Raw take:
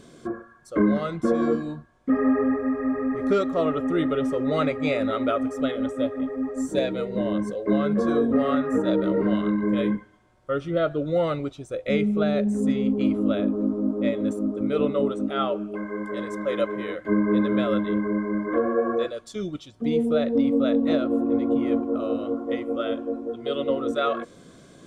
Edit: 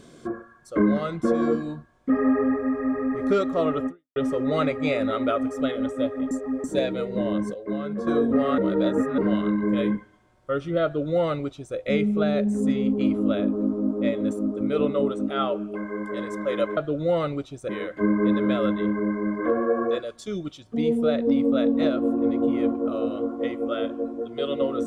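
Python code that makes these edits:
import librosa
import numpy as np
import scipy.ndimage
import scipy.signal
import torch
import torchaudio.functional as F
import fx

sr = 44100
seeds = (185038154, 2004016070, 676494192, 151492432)

y = fx.edit(x, sr, fx.fade_out_span(start_s=3.87, length_s=0.29, curve='exp'),
    fx.reverse_span(start_s=6.31, length_s=0.33),
    fx.clip_gain(start_s=7.54, length_s=0.53, db=-7.0),
    fx.reverse_span(start_s=8.58, length_s=0.6),
    fx.duplicate(start_s=10.84, length_s=0.92, to_s=16.77), tone=tone)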